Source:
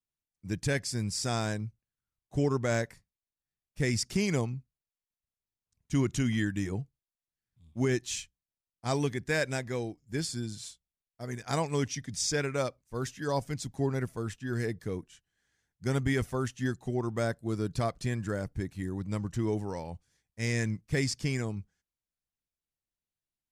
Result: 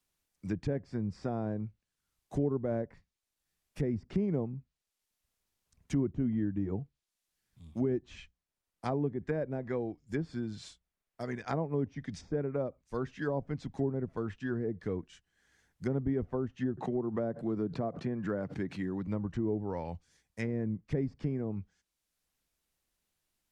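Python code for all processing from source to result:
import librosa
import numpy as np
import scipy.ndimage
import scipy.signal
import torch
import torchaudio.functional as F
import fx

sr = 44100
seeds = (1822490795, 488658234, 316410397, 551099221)

y = fx.chain(x, sr, fx.highpass(hz=120.0, slope=24),
    fx.pre_swell(db_per_s=120.0), at=(16.77, 19.07))
y = fx.env_lowpass_down(y, sr, base_hz=580.0, full_db=-27.0)
y = fx.peak_eq(y, sr, hz=120.0, db=-7.0, octaves=0.4)
y = fx.band_squash(y, sr, depth_pct=40)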